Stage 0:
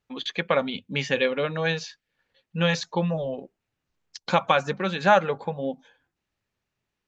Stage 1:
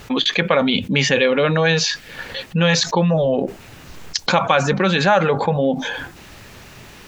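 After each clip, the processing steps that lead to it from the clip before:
envelope flattener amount 70%
level +1.5 dB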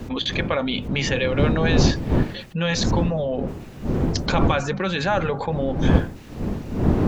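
wind on the microphone 240 Hz −16 dBFS
level −7 dB

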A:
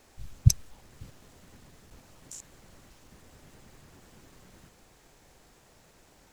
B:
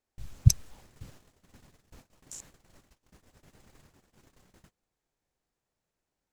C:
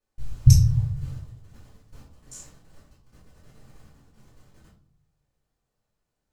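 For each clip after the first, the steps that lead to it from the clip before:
noise gate −52 dBFS, range −27 dB
convolution reverb RT60 0.50 s, pre-delay 3 ms, DRR −8 dB; level −9 dB

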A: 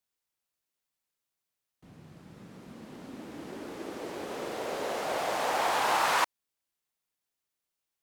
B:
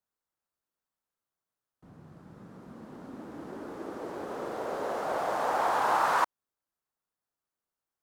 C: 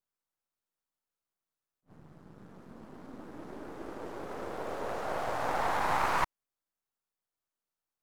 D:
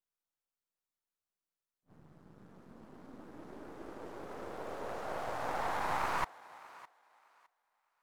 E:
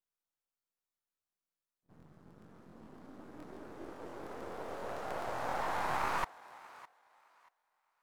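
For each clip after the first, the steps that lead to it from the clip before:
high shelf with overshoot 1,800 Hz −7.5 dB, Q 1.5
gain on one half-wave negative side −12 dB; level that may rise only so fast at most 390 dB per second
feedback echo with a high-pass in the loop 610 ms, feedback 24%, high-pass 500 Hz, level −18 dB; level −5 dB
regular buffer underruns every 0.14 s, samples 1,024, repeat, from 0:00.58

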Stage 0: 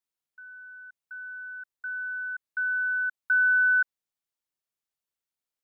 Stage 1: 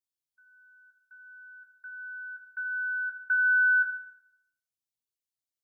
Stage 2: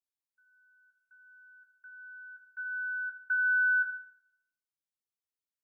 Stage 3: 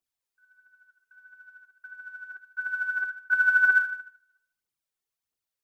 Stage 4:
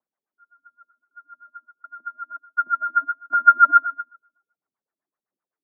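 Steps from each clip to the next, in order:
spectral dynamics exaggerated over time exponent 1.5; convolution reverb RT60 0.75 s, pre-delay 4 ms, DRR 1.5 dB; level −2 dB
dynamic equaliser 1,400 Hz, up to +4 dB, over −36 dBFS, Q 1.5; level −7.5 dB
phase shifter 1.5 Hz, delay 2.9 ms, feedback 53%; level +4 dB
auto-filter low-pass sine 7.8 Hz 360–1,700 Hz; single-sideband voice off tune −94 Hz 250–2,300 Hz; level +4 dB

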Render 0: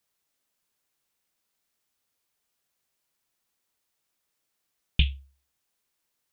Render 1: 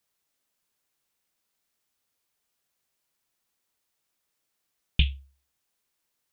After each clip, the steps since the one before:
no processing that can be heard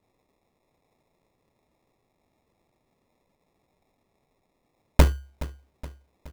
decimation without filtering 29×
repeating echo 421 ms, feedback 52%, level −17.5 dB
level +7 dB

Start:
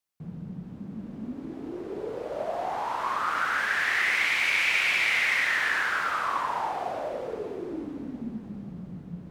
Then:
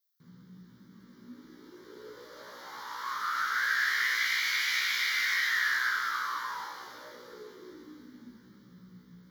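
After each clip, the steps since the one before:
spectral tilt +4 dB per octave
phaser with its sweep stopped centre 2,600 Hz, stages 6
tuned comb filter 61 Hz, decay 0.25 s, harmonics all, mix 100%
level +2 dB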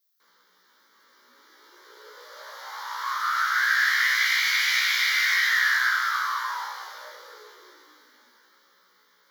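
high-pass filter 580 Hz 24 dB per octave
level +6.5 dB

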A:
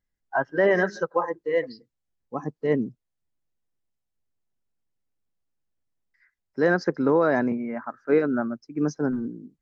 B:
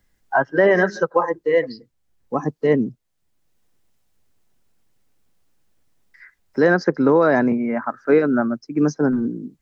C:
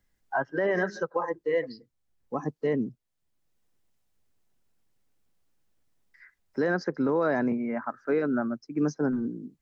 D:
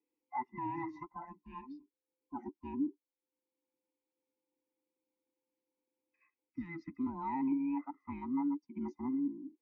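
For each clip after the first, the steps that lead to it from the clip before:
multiband upward and downward compressor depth 40%; level +6 dB
brickwall limiter −9 dBFS, peak gain reduction 5.5 dB; level −8 dB
frequency inversion band by band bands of 500 Hz; gain on a spectral selection 0:06.49–0:06.98, 340–1,200 Hz −21 dB; formant filter u

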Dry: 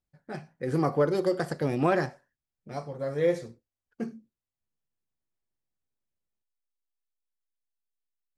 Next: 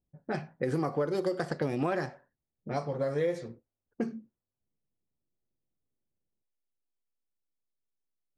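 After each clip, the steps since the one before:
downward compressor 5 to 1, threshold −35 dBFS, peak gain reduction 14.5 dB
low-shelf EQ 78 Hz −6.5 dB
low-pass that shuts in the quiet parts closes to 470 Hz, open at −33.5 dBFS
level +7.5 dB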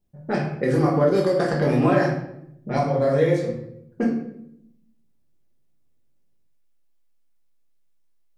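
convolution reverb RT60 0.75 s, pre-delay 5 ms, DRR −3 dB
level +5.5 dB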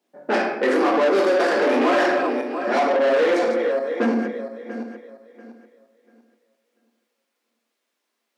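feedback delay that plays each chunk backwards 345 ms, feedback 49%, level −11 dB
mid-hump overdrive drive 26 dB, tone 2,600 Hz, clips at −5.5 dBFS
Chebyshev high-pass filter 220 Hz, order 5
level −4.5 dB

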